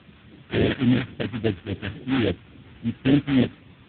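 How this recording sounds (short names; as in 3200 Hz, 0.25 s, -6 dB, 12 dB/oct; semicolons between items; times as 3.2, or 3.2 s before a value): aliases and images of a low sample rate 1100 Hz, jitter 20%; phasing stages 2, 3.6 Hz, lowest notch 490–1000 Hz; a quantiser's noise floor 8-bit, dither triangular; AMR-NB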